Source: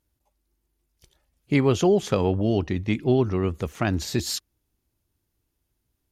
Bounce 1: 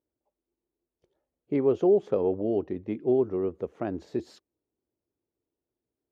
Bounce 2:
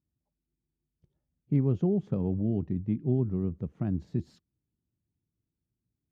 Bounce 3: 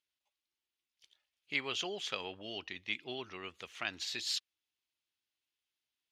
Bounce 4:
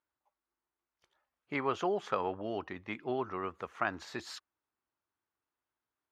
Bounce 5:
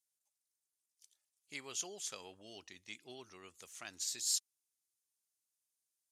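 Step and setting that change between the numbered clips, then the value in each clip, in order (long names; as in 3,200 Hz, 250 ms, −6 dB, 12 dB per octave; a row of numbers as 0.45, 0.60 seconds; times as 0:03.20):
resonant band-pass, frequency: 440, 160, 3,100, 1,200, 8,000 Hertz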